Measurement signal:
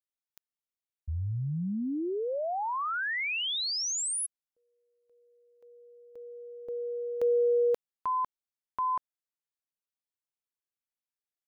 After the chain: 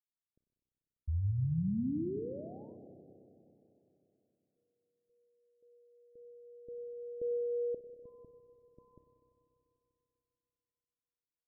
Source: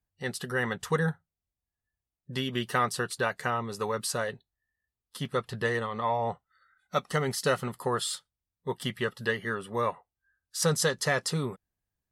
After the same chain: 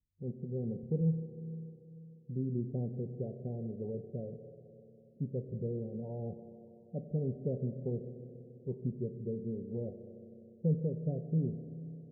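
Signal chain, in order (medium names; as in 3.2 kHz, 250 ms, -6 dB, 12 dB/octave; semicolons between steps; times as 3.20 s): Gaussian low-pass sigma 22 samples; spring tank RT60 3.2 s, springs 31/49 ms, chirp 35 ms, DRR 7.5 dB; loudest bins only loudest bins 32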